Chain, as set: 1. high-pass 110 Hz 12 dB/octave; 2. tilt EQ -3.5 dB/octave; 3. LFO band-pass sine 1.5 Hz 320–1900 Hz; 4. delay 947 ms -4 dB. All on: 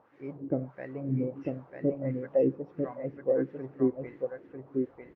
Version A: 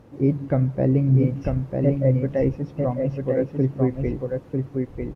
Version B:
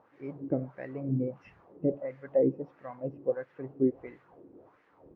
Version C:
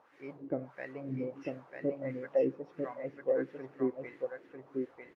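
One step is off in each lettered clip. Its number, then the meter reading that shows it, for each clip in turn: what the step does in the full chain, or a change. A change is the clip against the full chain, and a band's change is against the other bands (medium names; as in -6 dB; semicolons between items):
3, 125 Hz band +9.5 dB; 4, momentary loudness spread change +6 LU; 2, 2 kHz band +8.0 dB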